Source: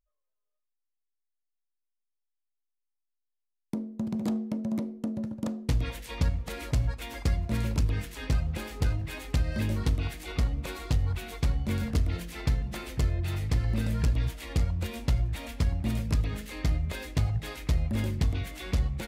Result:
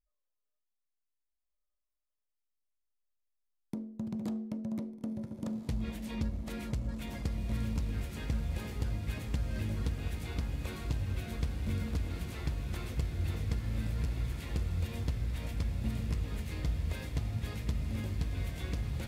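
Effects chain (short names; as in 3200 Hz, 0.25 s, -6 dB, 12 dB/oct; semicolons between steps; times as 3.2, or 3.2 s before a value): low shelf 160 Hz +5 dB; compressor, threshold -24 dBFS, peak gain reduction 8.5 dB; diffused feedback echo 1.625 s, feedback 60%, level -4 dB; gain -7 dB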